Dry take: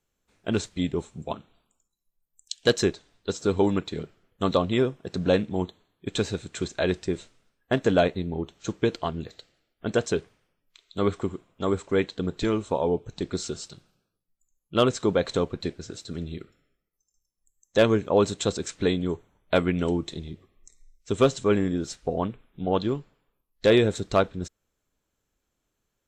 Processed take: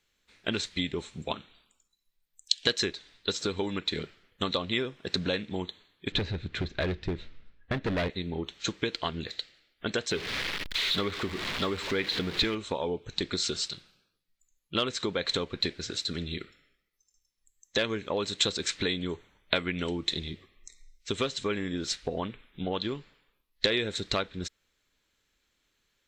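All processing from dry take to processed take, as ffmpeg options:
-filter_complex "[0:a]asettb=1/sr,asplit=3[a][b][c];[a]atrim=end=6.124[d];[b]atrim=start=6.12:end=8.1,asetpts=PTS-STARTPTS,afade=t=in:d=0.004:c=qsin,afade=t=out:st=1.976:d=0.004:c=qsin,lowpass=5.1k,aemphasis=mode=reproduction:type=riaa,asoftclip=type=hard:threshold=-16dB[e];[c]atrim=start=8.096[f];[d][e]acrossfade=d=0.004:c1=hsin:c2=qsin[g];[g][f]acrossfade=d=0.004:c1=qsin:c2=hsin,asettb=1/sr,asplit=3[h][i][j];[h]atrim=end=10.114[k];[i]atrim=start=10.11:end=12.55,asetpts=PTS-STARTPTS,afade=t=in:d=0.004:c=qsin,afade=t=out:st=2.436:d=0.004:c=qsin,aeval=exprs='val(0)+0.5*0.0266*sgn(val(0))':c=same,acrossover=split=5400[l][m];[m]acompressor=threshold=-50dB:ratio=4:attack=1:release=60[n];[l][n]amix=inputs=2:normalize=0[o];[j]atrim=start=12.546[p];[k][o]acrossfade=d=0.004:c1=hsin:c2=qsin[q];[q][p]acrossfade=d=0.004:c1=qsin:c2=hsin,equalizer=f=700:w=5.2:g=-3.5,acompressor=threshold=-28dB:ratio=6,equalizer=f=125:t=o:w=1:g=-3,equalizer=f=2k:t=o:w=1:g=9,equalizer=f=4k:t=o:w=1:g=11"

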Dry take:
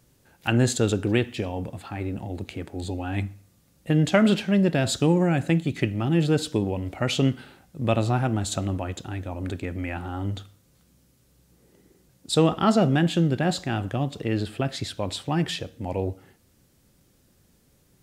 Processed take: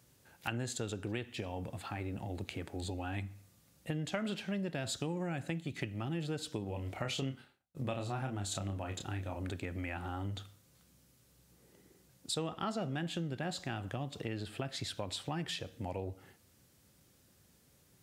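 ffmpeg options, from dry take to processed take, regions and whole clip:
-filter_complex "[0:a]asettb=1/sr,asplit=3[a][b][c];[a]atrim=end=6.654[d];[b]atrim=start=6.65:end=9.37,asetpts=PTS-STARTPTS,afade=t=in:d=0.004:c=qsin,afade=t=out:st=2.716:d=0.004:c=qsin,asplit=2[e][f];[f]adelay=30,volume=-5.5dB[g];[e][g]amix=inputs=2:normalize=0,atrim=end_sample=119952,agate=range=-33dB:threshold=-38dB:ratio=3:release=100:detection=peak[h];[c]atrim=start=9.366[i];[d][h]acrossfade=d=0.004:c1=hsin:c2=qsin[j];[j][i]acrossfade=d=0.004:c1=qsin:c2=hsin,highpass=74,equalizer=f=260:w=0.51:g=-4.5,acompressor=threshold=-34dB:ratio=4,volume=-2dB"

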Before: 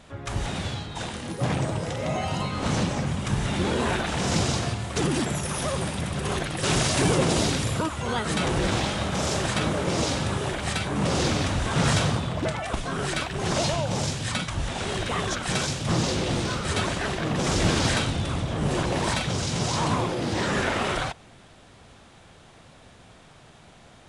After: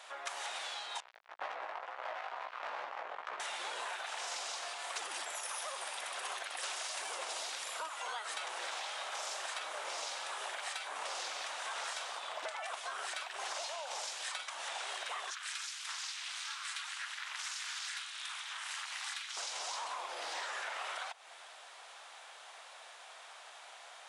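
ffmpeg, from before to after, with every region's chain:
-filter_complex "[0:a]asettb=1/sr,asplit=3[a][b][c];[a]atrim=end=1.004[d];[b]atrim=start=1:end=3.4,asetpts=PTS-STARTPTS,afade=t=in:d=0.004:c=qsin,afade=t=out:st=2.396:d=0.004:c=qsin,lowpass=1.2k,acrusher=bits=3:mix=0:aa=0.5,flanger=delay=15:depth=3.6:speed=2.1[e];[c]atrim=start=3.396[f];[d][e]acrossfade=d=0.004:c1=hsin:c2=qsin[g];[g][f]acrossfade=d=0.004:c1=qsin:c2=hsin,asettb=1/sr,asplit=3[h][i][j];[h]atrim=end=15.304[k];[i]atrim=start=15.3:end=19.37,asetpts=PTS-STARTPTS,afade=t=in:d=0.004:c=qsin,afade=t=out:st=4.066:d=0.004:c=qsin,highpass=f=1.3k:w=0.5412,highpass=f=1.3k:w=1.3066,aeval=exprs='val(0)+0.00355*(sin(2*PI*50*n/s)+sin(2*PI*2*50*n/s)/2+sin(2*PI*3*50*n/s)/3+sin(2*PI*4*50*n/s)/4+sin(2*PI*5*50*n/s)/5)':c=same,aeval=exprs='val(0)*sin(2*PI*150*n/s)':c=same[l];[j]atrim=start=19.366[m];[k][l]acrossfade=d=0.004:c1=hsin:c2=qsin[n];[n][m]acrossfade=d=0.004:c1=qsin:c2=hsin,highpass=f=700:w=0.5412,highpass=f=700:w=1.3066,acompressor=threshold=-40dB:ratio=10,volume=2dB"

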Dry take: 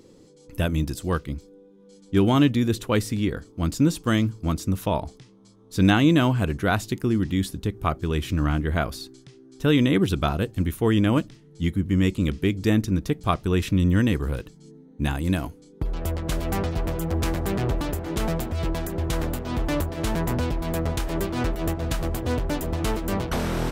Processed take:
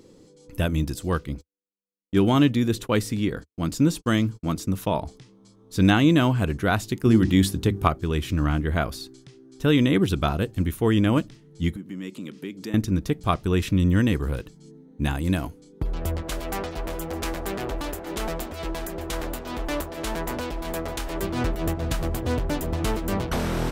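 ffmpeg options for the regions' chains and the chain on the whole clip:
-filter_complex "[0:a]asettb=1/sr,asplit=3[a][b][c];[a]atrim=end=1.354[d];[b]atrim=start=1.35:end=5.03,asetpts=PTS-STARTPTS,afade=t=in:d=0.004:c=qsin,afade=t=out:st=3.676:d=0.004:c=qsin,agate=range=-49dB:threshold=-41dB:ratio=16:release=100:detection=peak,equalizer=f=77:t=o:w=0.28:g=-13.5[e];[c]atrim=start=5.026[f];[d][e]acrossfade=d=0.004:c1=hsin:c2=qsin[g];[g][f]acrossfade=d=0.004:c1=qsin:c2=hsin,asettb=1/sr,asplit=3[h][i][j];[h]atrim=end=7.054[k];[i]atrim=start=7.05:end=7.88,asetpts=PTS-STARTPTS,afade=t=in:d=0.004:c=qsin,afade=t=out:st=0.826:d=0.004:c=qsin,highpass=54,bandreject=f=50:t=h:w=6,bandreject=f=100:t=h:w=6,bandreject=f=150:t=h:w=6,bandreject=f=200:t=h:w=6,bandreject=f=250:t=h:w=6,bandreject=f=300:t=h:w=6,bandreject=f=350:t=h:w=6,acontrast=65[l];[j]atrim=start=7.876[m];[k][l]acrossfade=d=0.004:c1=hsin:c2=qsin[n];[n][m]acrossfade=d=0.004:c1=qsin:c2=hsin,asettb=1/sr,asplit=3[o][p][q];[o]atrim=end=11.764[r];[p]atrim=start=11.76:end=12.74,asetpts=PTS-STARTPTS,afade=t=in:d=0.004:c=qsin,afade=t=out:st=0.976:d=0.004:c=qsin,bandreject=f=720:w=6.5,acompressor=threshold=-31dB:ratio=3:attack=3.2:release=140:knee=1:detection=peak,highpass=f=180:w=0.5412,highpass=f=180:w=1.3066[s];[q]atrim=start=12.736[t];[r][s]acrossfade=d=0.004:c1=hsin:c2=qsin[u];[u][t]acrossfade=d=0.004:c1=qsin:c2=hsin,asettb=1/sr,asplit=3[v][w][x];[v]atrim=end=16.224[y];[w]atrim=start=16.22:end=21.23,asetpts=PTS-STARTPTS,afade=t=in:d=0.004:c=qsin,afade=t=out:st=5.006:d=0.004:c=qsin,equalizer=f=110:w=0.74:g=-15,aecho=1:1:608:0.188,atrim=end_sample=220941[z];[x]atrim=start=21.226[aa];[y][z]acrossfade=d=0.004:c1=hsin:c2=qsin[ab];[ab][aa]acrossfade=d=0.004:c1=qsin:c2=hsin"

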